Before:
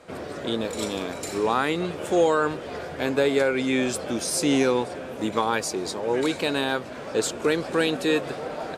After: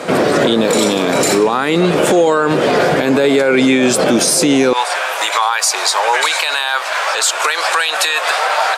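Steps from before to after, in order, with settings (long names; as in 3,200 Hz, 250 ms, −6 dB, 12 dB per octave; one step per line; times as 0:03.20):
high-pass filter 130 Hz 24 dB per octave, from 0:04.73 840 Hz
downward compressor, threshold −29 dBFS, peak gain reduction 12.5 dB
boost into a limiter +28 dB
level −3 dB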